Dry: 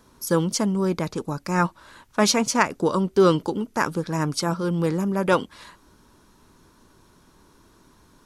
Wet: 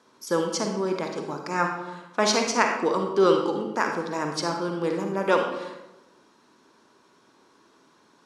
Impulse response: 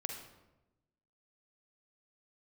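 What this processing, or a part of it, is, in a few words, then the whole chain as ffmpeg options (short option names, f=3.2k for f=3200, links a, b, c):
supermarket ceiling speaker: -filter_complex "[0:a]highpass=300,lowpass=6.4k[a];[1:a]atrim=start_sample=2205[b];[a][b]afir=irnorm=-1:irlink=0"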